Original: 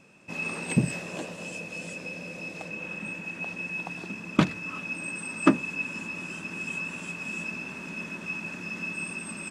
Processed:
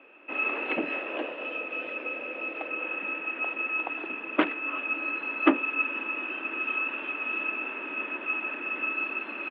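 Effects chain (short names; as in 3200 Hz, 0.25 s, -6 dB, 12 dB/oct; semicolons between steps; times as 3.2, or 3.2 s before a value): in parallel at -3 dB: wavefolder -18 dBFS; on the sum: harmoniser -12 st -11 dB; Chebyshev band-pass 290–3000 Hz, order 4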